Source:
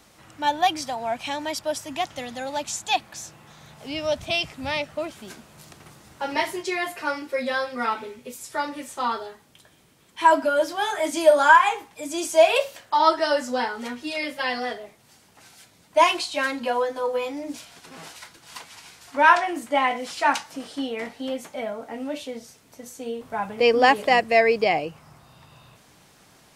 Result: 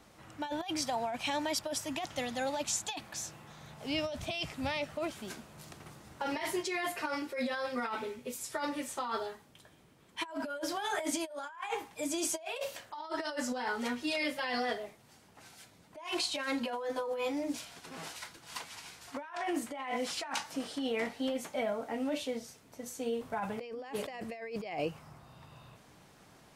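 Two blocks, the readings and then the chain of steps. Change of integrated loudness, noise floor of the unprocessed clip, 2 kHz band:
-13.0 dB, -56 dBFS, -14.0 dB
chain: compressor with a negative ratio -29 dBFS, ratio -1; tape noise reduction on one side only decoder only; trim -7.5 dB

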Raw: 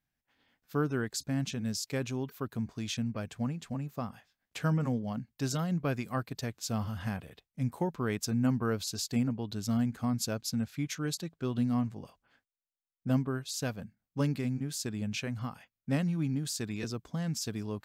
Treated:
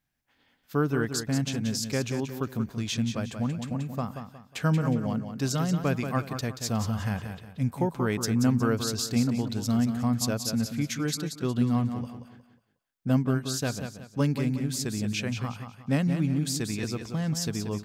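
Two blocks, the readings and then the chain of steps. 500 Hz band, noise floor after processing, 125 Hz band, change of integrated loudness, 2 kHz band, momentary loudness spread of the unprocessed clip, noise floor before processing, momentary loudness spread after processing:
+5.0 dB, -69 dBFS, +5.5 dB, +5.0 dB, +5.0 dB, 8 LU, under -85 dBFS, 7 LU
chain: feedback delay 181 ms, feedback 33%, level -8 dB; trim +4.5 dB

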